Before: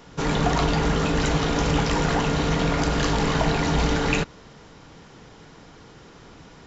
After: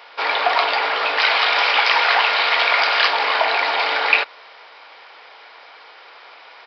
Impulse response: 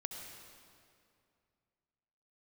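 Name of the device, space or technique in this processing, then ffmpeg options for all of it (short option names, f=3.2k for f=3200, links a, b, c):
musical greeting card: -filter_complex "[0:a]aresample=11025,aresample=44100,highpass=f=620:w=0.5412,highpass=f=620:w=1.3066,equalizer=f=2.3k:t=o:w=0.26:g=7,asettb=1/sr,asplit=3[a][b][c];[a]atrim=end=1.184[d];[b]atrim=start=1.18:end=3.08,asetpts=PTS-STARTPTS,afade=t=in:d=0.004:c=qsin,afade=t=out:st=1.896:d=0.004:c=qsin,tiltshelf=f=730:g=-5[e];[c]atrim=start=3.076[f];[d][e]acrossfade=d=0.004:c1=hsin:c2=qsin[g];[g][f]acrossfade=d=0.004:c1=qsin:c2=hsin,volume=8dB"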